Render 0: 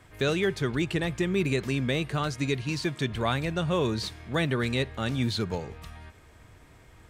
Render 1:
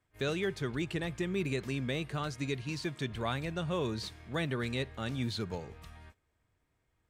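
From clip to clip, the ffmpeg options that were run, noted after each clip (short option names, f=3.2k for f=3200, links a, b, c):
-af "agate=range=-17dB:threshold=-47dB:ratio=16:detection=peak,volume=-7dB"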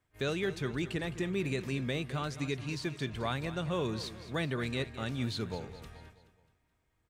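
-af "aecho=1:1:213|426|639|852:0.2|0.0938|0.0441|0.0207"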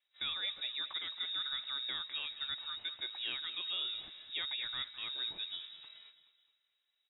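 -af "lowpass=f=3.3k:t=q:w=0.5098,lowpass=f=3.3k:t=q:w=0.6013,lowpass=f=3.3k:t=q:w=0.9,lowpass=f=3.3k:t=q:w=2.563,afreqshift=-3900,volume=-5.5dB"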